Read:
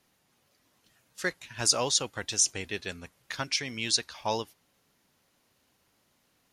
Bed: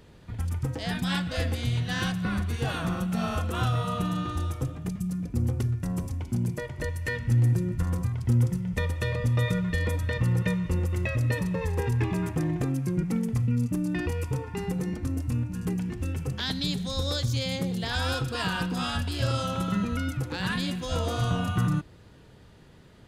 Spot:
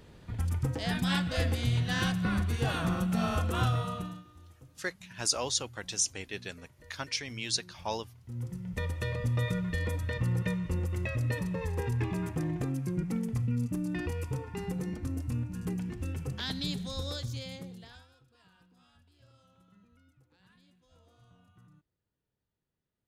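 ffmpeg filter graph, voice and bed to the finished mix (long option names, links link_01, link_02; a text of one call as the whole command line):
ffmpeg -i stem1.wav -i stem2.wav -filter_complex "[0:a]adelay=3600,volume=-4.5dB[link_01];[1:a]volume=18.5dB,afade=type=out:start_time=3.61:duration=0.63:silence=0.0668344,afade=type=in:start_time=8.25:duration=0.64:silence=0.105925,afade=type=out:start_time=16.71:duration=1.36:silence=0.0316228[link_02];[link_01][link_02]amix=inputs=2:normalize=0" out.wav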